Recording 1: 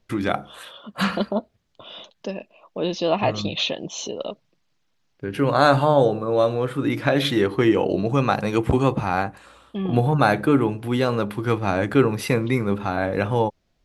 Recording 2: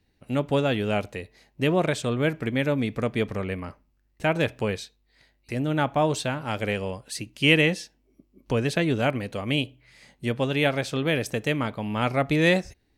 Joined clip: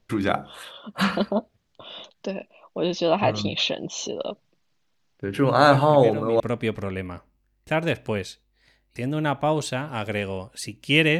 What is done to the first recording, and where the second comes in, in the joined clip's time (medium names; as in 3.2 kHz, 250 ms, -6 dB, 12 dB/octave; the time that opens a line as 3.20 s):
recording 1
5.60 s: add recording 2 from 2.13 s 0.80 s -9 dB
6.40 s: go over to recording 2 from 2.93 s